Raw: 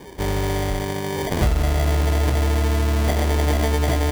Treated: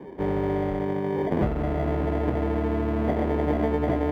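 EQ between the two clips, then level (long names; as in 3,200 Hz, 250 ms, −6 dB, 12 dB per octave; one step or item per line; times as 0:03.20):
three-way crossover with the lows and the highs turned down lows −16 dB, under 160 Hz, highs −23 dB, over 2,700 Hz
tilt shelving filter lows +6.5 dB, about 730 Hz
high-shelf EQ 11,000 Hz +4 dB
−2.5 dB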